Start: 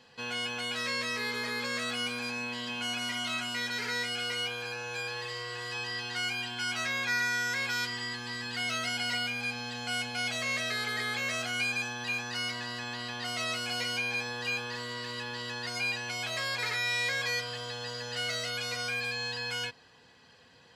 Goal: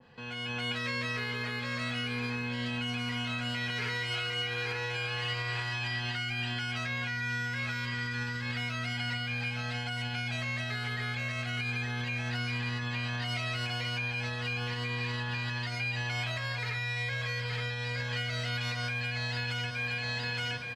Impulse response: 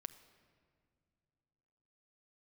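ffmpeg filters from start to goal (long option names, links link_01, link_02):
-filter_complex "[0:a]bass=frequency=250:gain=8,treble=frequency=4000:gain=-15,asplit=2[link_01][link_02];[link_02]aecho=0:1:868|1736|2604|3472:0.473|0.161|0.0547|0.0186[link_03];[link_01][link_03]amix=inputs=2:normalize=0,acrossover=split=160[link_04][link_05];[link_05]acompressor=threshold=-39dB:ratio=6[link_06];[link_04][link_06]amix=inputs=2:normalize=0,alimiter=level_in=11dB:limit=-24dB:level=0:latency=1:release=245,volume=-11dB,dynaudnorm=framelen=170:gausssize=5:maxgain=8dB,adynamicequalizer=threshold=0.00282:dfrequency=1900:dqfactor=0.7:tfrequency=1900:tqfactor=0.7:attack=5:release=100:ratio=0.375:range=3:mode=boostabove:tftype=highshelf"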